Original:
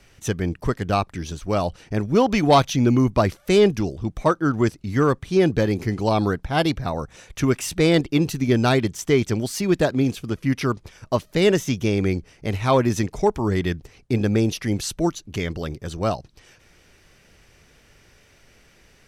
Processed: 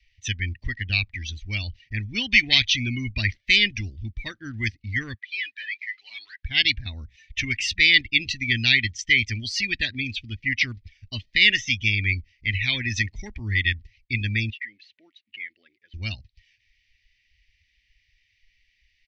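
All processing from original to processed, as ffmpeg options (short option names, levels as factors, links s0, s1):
-filter_complex "[0:a]asettb=1/sr,asplit=3[s0][s1][s2];[s0]atrim=end=5.144[s3];[s1]atrim=start=5.14:end=6.43,asetpts=PTS-STARTPTS,afade=t=in:d=0.004:c=qsin,afade=t=out:st=1.286:d=0.004:c=qsin,asuperpass=centerf=2400:order=4:qfactor=0.65,asoftclip=type=hard:threshold=0.02[s4];[s2]atrim=start=6.426[s5];[s3][s4]acrossfade=d=0.004:c1=hsin:c2=qsin[s6];[s6][s5]acrossfade=d=0.004:c1=qsin:c2=hsin,asettb=1/sr,asplit=3[s7][s8][s9];[s7]atrim=end=14.504[s10];[s8]atrim=start=14.5:end=15.94,asetpts=PTS-STARTPTS,afade=t=in:d=0.004:c=qsin,afade=t=out:st=1.436:d=0.004:c=qsin,acrusher=bits=8:mode=log:mix=0:aa=0.000001,acompressor=threshold=0.0158:ratio=2:attack=3.2:release=140:knee=1:detection=peak,highpass=440,lowpass=2600[s11];[s9]atrim=start=15.936[s12];[s10][s11]acrossfade=d=0.004:c1=hsin:c2=qsin[s13];[s13][s12]acrossfade=d=0.004:c1=qsin:c2=hsin,afftdn=nr=20:nf=-37,firequalizer=gain_entry='entry(100,0);entry(160,-22);entry(220,-10);entry(430,-28);entry(1300,-26);entry(1900,13);entry(4700,9);entry(9100,-21)':delay=0.05:min_phase=1"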